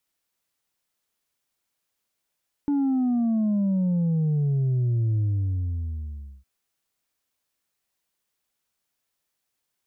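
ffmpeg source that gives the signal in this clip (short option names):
-f lavfi -i "aevalsrc='0.0944*clip((3.76-t)/1.26,0,1)*tanh(1.33*sin(2*PI*290*3.76/log(65/290)*(exp(log(65/290)*t/3.76)-1)))/tanh(1.33)':d=3.76:s=44100"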